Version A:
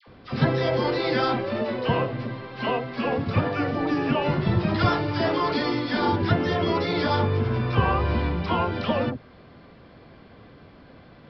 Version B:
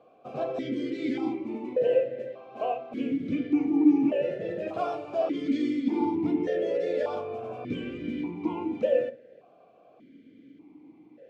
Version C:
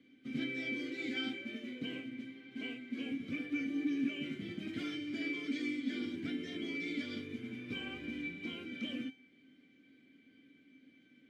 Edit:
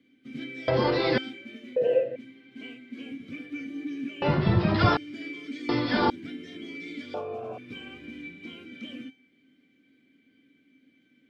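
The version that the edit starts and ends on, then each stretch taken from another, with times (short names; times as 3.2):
C
0.68–1.18 from A
1.76–2.16 from B
4.22–4.97 from A
5.69–6.1 from A
7.14–7.58 from B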